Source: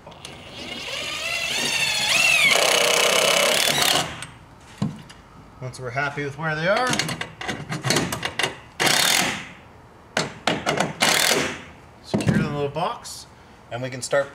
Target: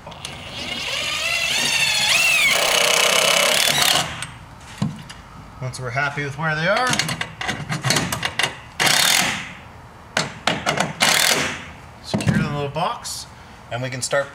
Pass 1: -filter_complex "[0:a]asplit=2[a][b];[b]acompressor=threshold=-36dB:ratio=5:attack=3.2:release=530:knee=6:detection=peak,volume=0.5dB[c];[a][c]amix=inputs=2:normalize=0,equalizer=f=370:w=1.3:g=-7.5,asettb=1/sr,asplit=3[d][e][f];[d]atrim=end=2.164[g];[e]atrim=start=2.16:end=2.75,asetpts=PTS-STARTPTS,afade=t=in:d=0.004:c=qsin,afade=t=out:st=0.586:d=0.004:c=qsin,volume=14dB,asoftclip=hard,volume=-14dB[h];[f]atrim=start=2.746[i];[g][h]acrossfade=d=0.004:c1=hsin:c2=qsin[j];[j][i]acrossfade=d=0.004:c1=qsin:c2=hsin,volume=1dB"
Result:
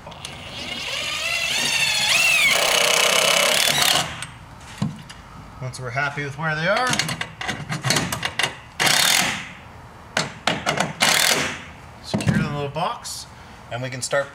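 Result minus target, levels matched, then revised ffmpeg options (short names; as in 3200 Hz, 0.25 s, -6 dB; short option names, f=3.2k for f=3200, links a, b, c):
compressor: peak gain reduction +7.5 dB
-filter_complex "[0:a]asplit=2[a][b];[b]acompressor=threshold=-26.5dB:ratio=5:attack=3.2:release=530:knee=6:detection=peak,volume=0.5dB[c];[a][c]amix=inputs=2:normalize=0,equalizer=f=370:w=1.3:g=-7.5,asettb=1/sr,asplit=3[d][e][f];[d]atrim=end=2.164[g];[e]atrim=start=2.16:end=2.75,asetpts=PTS-STARTPTS,afade=t=in:d=0.004:c=qsin,afade=t=out:st=0.586:d=0.004:c=qsin,volume=14dB,asoftclip=hard,volume=-14dB[h];[f]atrim=start=2.746[i];[g][h]acrossfade=d=0.004:c1=hsin:c2=qsin[j];[j][i]acrossfade=d=0.004:c1=qsin:c2=hsin,volume=1dB"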